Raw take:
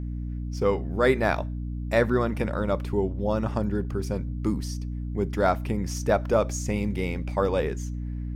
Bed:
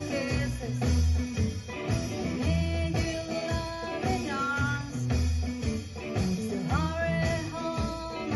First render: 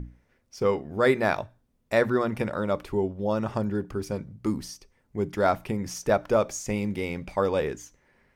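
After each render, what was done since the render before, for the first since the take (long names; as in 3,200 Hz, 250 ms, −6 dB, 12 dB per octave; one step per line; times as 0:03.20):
mains-hum notches 60/120/180/240/300 Hz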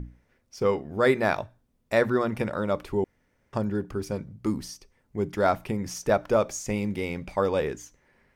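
0:03.04–0:03.53: fill with room tone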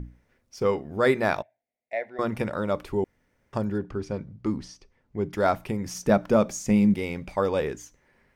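0:01.42–0:02.19: pair of resonant band-passes 1,200 Hz, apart 1.6 octaves
0:03.78–0:05.33: high-frequency loss of the air 100 metres
0:05.95–0:06.94: parametric band 200 Hz +11 dB 0.82 octaves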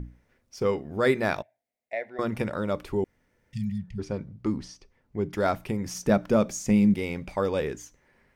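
0:03.36–0:03.97: healed spectral selection 230–1,800 Hz before
dynamic equaliser 880 Hz, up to −4 dB, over −33 dBFS, Q 0.93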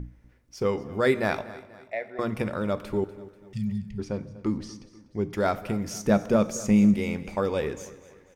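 repeating echo 244 ms, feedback 45%, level −18 dB
dense smooth reverb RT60 1.2 s, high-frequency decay 0.85×, DRR 14.5 dB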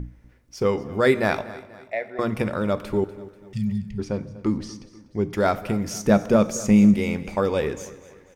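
level +4 dB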